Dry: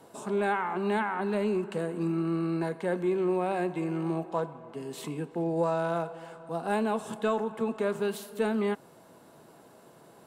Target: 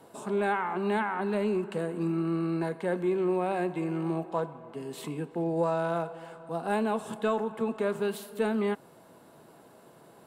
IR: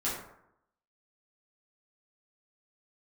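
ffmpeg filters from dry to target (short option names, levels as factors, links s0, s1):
-af "equalizer=f=6100:t=o:w=0.65:g=-3.5"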